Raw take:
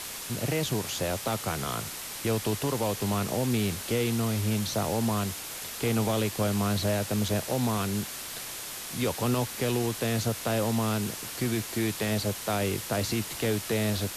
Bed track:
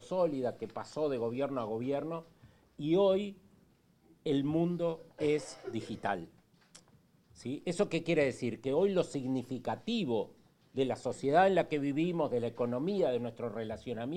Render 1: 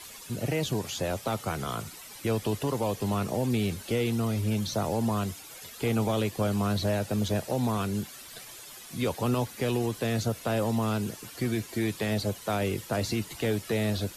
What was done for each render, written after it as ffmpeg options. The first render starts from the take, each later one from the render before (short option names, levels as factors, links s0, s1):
-af "afftdn=nr=12:nf=-39"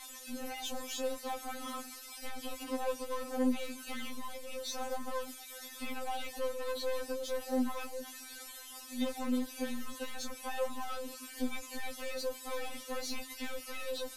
-af "aeval=exprs='(tanh(31.6*val(0)+0.2)-tanh(0.2))/31.6':c=same,afftfilt=real='re*3.46*eq(mod(b,12),0)':imag='im*3.46*eq(mod(b,12),0)':win_size=2048:overlap=0.75"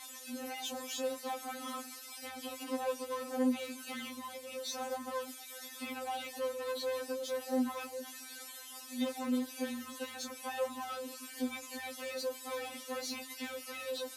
-af "highpass=71"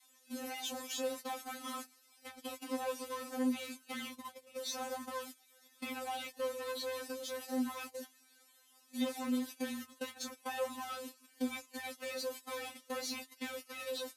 -af "agate=range=0.126:threshold=0.00708:ratio=16:detection=peak,adynamicequalizer=threshold=0.00355:dfrequency=520:dqfactor=0.82:tfrequency=520:tqfactor=0.82:attack=5:release=100:ratio=0.375:range=3.5:mode=cutabove:tftype=bell"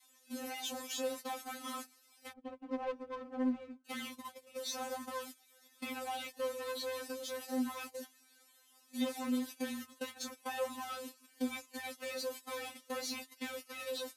-filter_complex "[0:a]asplit=3[s0][s1][s2];[s0]afade=t=out:st=2.32:d=0.02[s3];[s1]adynamicsmooth=sensitivity=4.5:basefreq=560,afade=t=in:st=2.32:d=0.02,afade=t=out:st=3.84:d=0.02[s4];[s2]afade=t=in:st=3.84:d=0.02[s5];[s3][s4][s5]amix=inputs=3:normalize=0"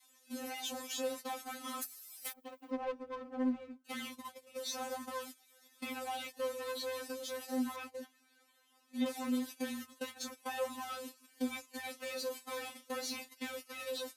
-filter_complex "[0:a]asplit=3[s0][s1][s2];[s0]afade=t=out:st=1.81:d=0.02[s3];[s1]aemphasis=mode=production:type=riaa,afade=t=in:st=1.81:d=0.02,afade=t=out:st=2.7:d=0.02[s4];[s2]afade=t=in:st=2.7:d=0.02[s5];[s3][s4][s5]amix=inputs=3:normalize=0,asettb=1/sr,asplit=3[s6][s7][s8];[s6]atrim=end=7.764[s9];[s7]atrim=start=7.76:end=9.06,asetpts=PTS-STARTPTS,afade=t=in:d=0.004:c=qsin,afade=t=out:st=1.296:d=0.004:c=qsin,bass=f=250:g=2,treble=f=4000:g=-9[s10];[s8]atrim=start=9.056[s11];[s9][s10]acrossfade=d=0.004:c1=hsin:c2=qsin[s12];[s12][s11]acrossfade=d=0.004:c1=qsin:c2=hsin,asettb=1/sr,asplit=3[s13][s14][s15];[s13]atrim=end=11.834[s16];[s14]atrim=start=11.83:end=13.29,asetpts=PTS-STARTPTS,afade=t=in:d=0.004:c=qsin,afade=t=out:st=1.456:d=0.004:c=qsin,asplit=2[s17][s18];[s18]adelay=41,volume=0.224[s19];[s17][s19]amix=inputs=2:normalize=0,atrim=end_sample=64386[s20];[s15]atrim=start=13.286[s21];[s16][s20]acrossfade=d=0.004:c1=hsin:c2=qsin[s22];[s22][s21]acrossfade=d=0.004:c1=qsin:c2=hsin"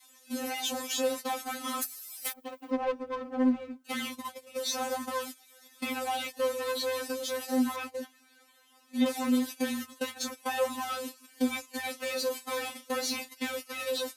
-af "volume=2.51"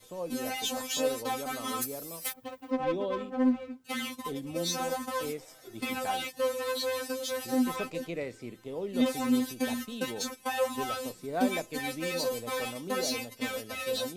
-filter_complex "[1:a]volume=0.447[s0];[0:a][s0]amix=inputs=2:normalize=0"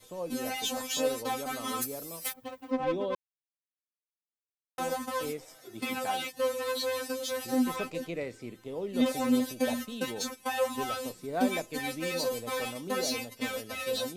-filter_complex "[0:a]asettb=1/sr,asplit=3[s0][s1][s2];[s0]atrim=end=5.564[s3];[s1]atrim=start=5.56:end=6.3,asetpts=PTS-STARTPTS,afade=t=in:d=0.004:c=qsin,afade=t=out:st=0.736:d=0.004:c=qsin,highpass=99[s4];[s2]atrim=start=6.296[s5];[s3][s4]acrossfade=d=0.004:c1=hsin:c2=qsin[s6];[s6][s5]acrossfade=d=0.004:c1=qsin:c2=hsin,asettb=1/sr,asplit=3[s7][s8][s9];[s7]atrim=end=9.114[s10];[s8]atrim=start=9.11:end=9.88,asetpts=PTS-STARTPTS,afade=t=in:d=0.004:c=qsin,afade=t=out:st=0.766:d=0.004:c=qsin,equalizer=f=590:w=4.6:g=12.5[s11];[s9]atrim=start=9.876[s12];[s10][s11]acrossfade=d=0.004:c1=hsin:c2=qsin[s13];[s13][s12]acrossfade=d=0.004:c1=qsin:c2=hsin,asplit=3[s14][s15][s16];[s14]atrim=end=3.15,asetpts=PTS-STARTPTS,afade=t=out:st=3.146:d=0.004:c=hsin[s17];[s15]atrim=start=3.15:end=4.78,asetpts=PTS-STARTPTS,volume=0[s18];[s16]atrim=start=4.78,asetpts=PTS-STARTPTS,afade=t=in:d=0.004:c=hsin[s19];[s17][s18][s19]concat=n=3:v=0:a=1"